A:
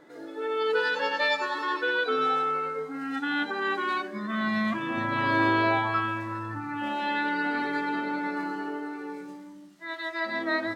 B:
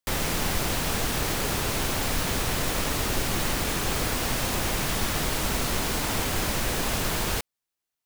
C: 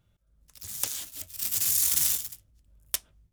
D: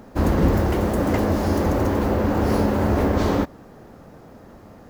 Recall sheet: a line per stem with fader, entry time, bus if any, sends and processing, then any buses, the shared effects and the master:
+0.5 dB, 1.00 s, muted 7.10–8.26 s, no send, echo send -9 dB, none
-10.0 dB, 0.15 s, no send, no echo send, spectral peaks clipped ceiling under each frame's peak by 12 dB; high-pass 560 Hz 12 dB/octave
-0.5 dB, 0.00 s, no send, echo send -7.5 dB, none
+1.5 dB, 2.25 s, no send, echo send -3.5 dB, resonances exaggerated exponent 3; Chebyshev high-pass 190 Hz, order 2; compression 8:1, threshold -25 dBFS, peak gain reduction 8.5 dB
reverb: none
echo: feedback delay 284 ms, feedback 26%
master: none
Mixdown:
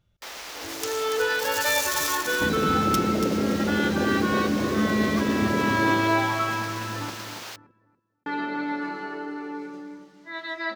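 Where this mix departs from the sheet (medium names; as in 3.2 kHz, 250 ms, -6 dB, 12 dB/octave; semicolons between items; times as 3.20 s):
stem A: entry 1.00 s -> 0.45 s; master: extra resonant high shelf 7.2 kHz -6 dB, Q 1.5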